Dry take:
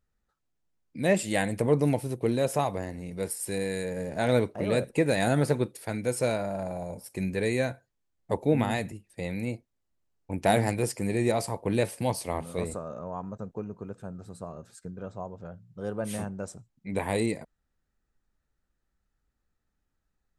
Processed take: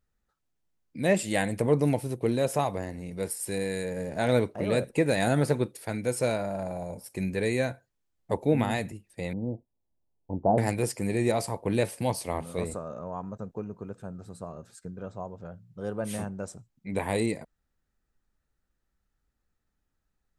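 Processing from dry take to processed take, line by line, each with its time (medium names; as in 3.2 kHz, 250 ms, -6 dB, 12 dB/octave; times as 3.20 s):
9.33–10.58 s: steep low-pass 1 kHz 48 dB/octave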